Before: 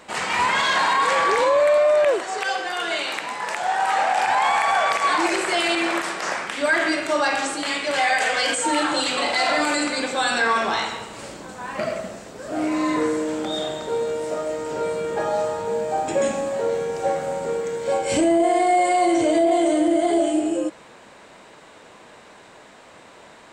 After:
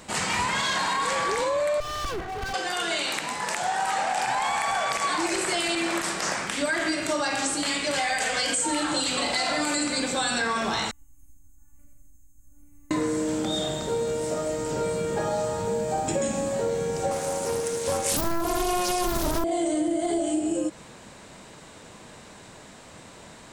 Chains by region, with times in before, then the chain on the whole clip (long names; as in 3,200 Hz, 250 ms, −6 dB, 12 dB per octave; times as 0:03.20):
0:01.80–0:02.54: lower of the sound and its delayed copy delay 2.6 ms + low-pass filter 1,800 Hz + hard clipping −28.5 dBFS
0:10.91–0:12.91: inverse Chebyshev band-stop filter 210–8,900 Hz + phases set to zero 291 Hz + bad sample-rate conversion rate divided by 2×, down none, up hold
0:17.11–0:19.44: high-pass filter 250 Hz + high-shelf EQ 4,800 Hz +8.5 dB + highs frequency-modulated by the lows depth 0.9 ms
whole clip: bass and treble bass +12 dB, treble +9 dB; downward compressor, threshold −20 dBFS; level −2.5 dB